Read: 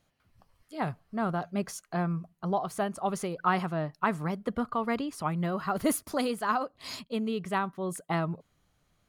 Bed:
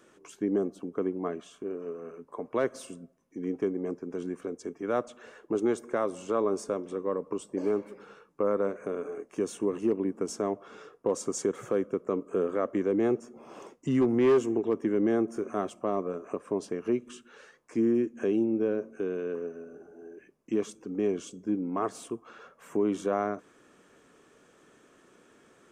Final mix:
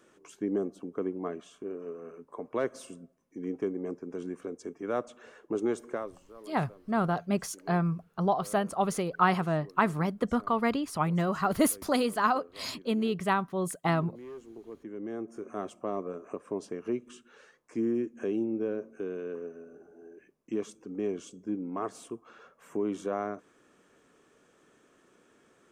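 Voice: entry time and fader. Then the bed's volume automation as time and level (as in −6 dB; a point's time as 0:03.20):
5.75 s, +2.5 dB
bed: 0:05.91 −2.5 dB
0:06.30 −22.5 dB
0:14.30 −22.5 dB
0:15.69 −4 dB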